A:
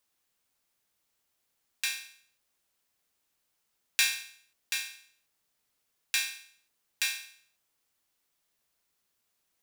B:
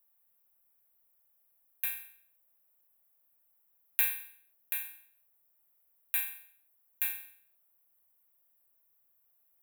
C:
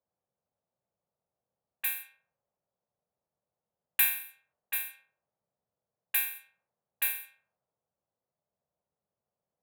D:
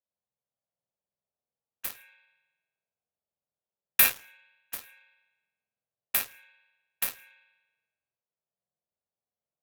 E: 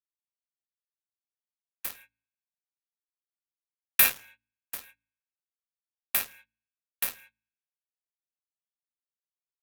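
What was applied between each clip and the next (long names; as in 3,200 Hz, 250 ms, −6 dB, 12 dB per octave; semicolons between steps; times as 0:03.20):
drawn EQ curve 180 Hz 0 dB, 300 Hz −13 dB, 560 Hz +3 dB, 1,100 Hz −2 dB, 2,300 Hz −6 dB, 3,700 Hz −12 dB, 5,300 Hz −28 dB, 13,000 Hz +13 dB; level −2.5 dB
high-pass filter 91 Hz; low-pass that shuts in the quiet parts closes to 610 Hz, open at −34.5 dBFS; level +5.5 dB
spring reverb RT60 1.1 s, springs 48 ms, chirp 80 ms, DRR −2 dB; harmonic generator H 7 −16 dB, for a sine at −9 dBFS; level +6.5 dB
noise gate −50 dBFS, range −32 dB; hum removal 55.58 Hz, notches 5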